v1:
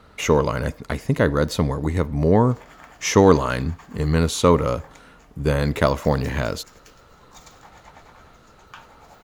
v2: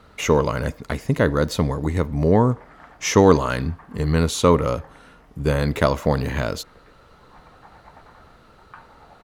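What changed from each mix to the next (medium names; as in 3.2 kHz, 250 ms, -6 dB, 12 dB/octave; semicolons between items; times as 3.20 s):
background: add low-pass 1.9 kHz 24 dB/octave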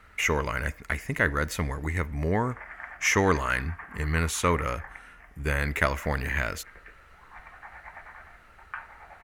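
background +8.0 dB; master: add graphic EQ 125/250/500/1000/2000/4000 Hz -10/-8/-9/-6/+9/-11 dB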